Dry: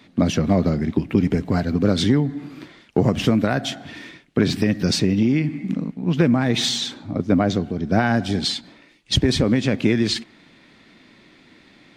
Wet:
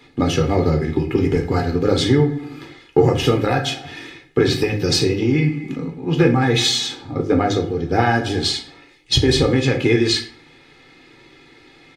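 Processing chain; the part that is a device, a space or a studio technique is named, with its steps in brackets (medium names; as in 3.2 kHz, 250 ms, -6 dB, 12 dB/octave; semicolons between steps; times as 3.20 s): microphone above a desk (comb 2.4 ms, depth 82%; reverberation RT60 0.45 s, pre-delay 4 ms, DRR 1.5 dB)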